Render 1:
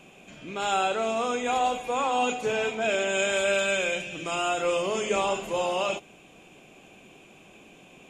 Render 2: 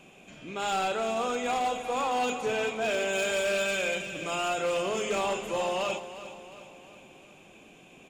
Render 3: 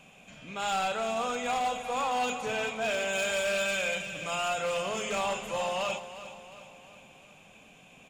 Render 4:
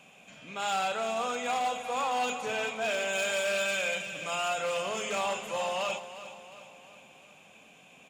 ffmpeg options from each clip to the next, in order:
ffmpeg -i in.wav -filter_complex "[0:a]volume=22dB,asoftclip=hard,volume=-22dB,asplit=2[link_01][link_02];[link_02]aecho=0:1:356|712|1068|1424|1780:0.224|0.114|0.0582|0.0297|0.0151[link_03];[link_01][link_03]amix=inputs=2:normalize=0,volume=-2dB" out.wav
ffmpeg -i in.wav -af "equalizer=frequency=350:width=2.7:gain=-13.5" out.wav
ffmpeg -i in.wav -af "highpass=frequency=220:poles=1" out.wav

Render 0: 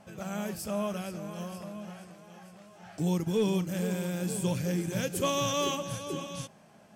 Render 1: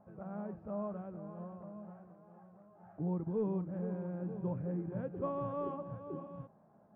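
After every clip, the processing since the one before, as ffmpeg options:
ffmpeg -i in.wav -af "lowpass=frequency=1200:width=0.5412,lowpass=frequency=1200:width=1.3066,volume=-7dB" out.wav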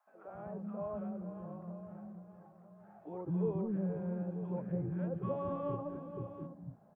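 ffmpeg -i in.wav -filter_complex "[0:a]acrossover=split=320|1100[link_01][link_02][link_03];[link_02]adelay=70[link_04];[link_01]adelay=280[link_05];[link_05][link_04][link_03]amix=inputs=3:normalize=0,volume=2dB" out.wav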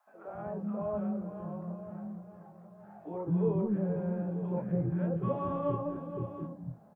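ffmpeg -i in.wav -filter_complex "[0:a]asplit=2[link_01][link_02];[link_02]adelay=24,volume=-6.5dB[link_03];[link_01][link_03]amix=inputs=2:normalize=0,volume=4.5dB" out.wav

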